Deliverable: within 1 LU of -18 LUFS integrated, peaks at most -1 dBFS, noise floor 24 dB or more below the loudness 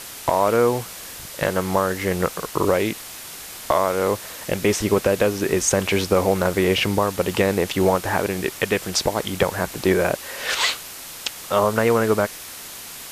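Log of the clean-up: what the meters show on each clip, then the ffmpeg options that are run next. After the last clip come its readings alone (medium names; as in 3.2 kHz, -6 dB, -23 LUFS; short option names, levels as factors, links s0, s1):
noise floor -37 dBFS; noise floor target -46 dBFS; loudness -21.5 LUFS; peak level -5.5 dBFS; loudness target -18.0 LUFS
-> -af "afftdn=nr=9:nf=-37"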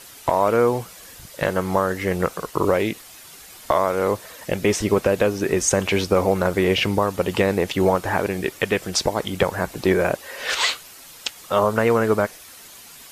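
noise floor -44 dBFS; noise floor target -46 dBFS
-> -af "afftdn=nr=6:nf=-44"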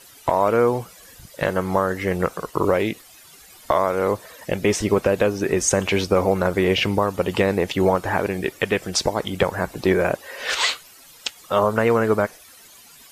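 noise floor -48 dBFS; loudness -21.5 LUFS; peak level -5.5 dBFS; loudness target -18.0 LUFS
-> -af "volume=1.5"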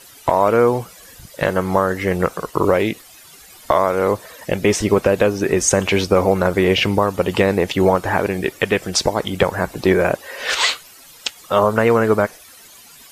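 loudness -18.0 LUFS; peak level -2.0 dBFS; noise floor -44 dBFS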